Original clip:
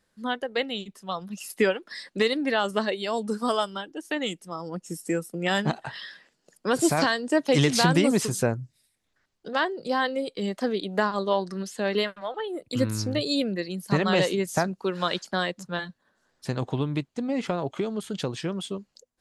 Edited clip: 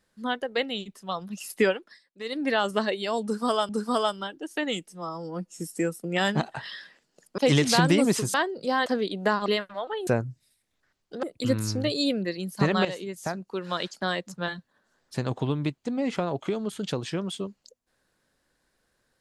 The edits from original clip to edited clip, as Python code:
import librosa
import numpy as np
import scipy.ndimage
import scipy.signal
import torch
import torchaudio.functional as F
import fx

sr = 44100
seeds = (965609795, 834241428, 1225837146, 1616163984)

y = fx.edit(x, sr, fx.fade_down_up(start_s=1.71, length_s=0.76, db=-23.5, fade_s=0.28),
    fx.repeat(start_s=3.23, length_s=0.46, count=2),
    fx.stretch_span(start_s=4.42, length_s=0.48, factor=1.5),
    fx.cut(start_s=6.68, length_s=0.76),
    fx.move(start_s=8.4, length_s=1.16, to_s=12.54),
    fx.cut(start_s=10.08, length_s=0.5),
    fx.cut(start_s=11.18, length_s=0.75),
    fx.fade_in_from(start_s=14.16, length_s=1.53, floor_db=-12.5), tone=tone)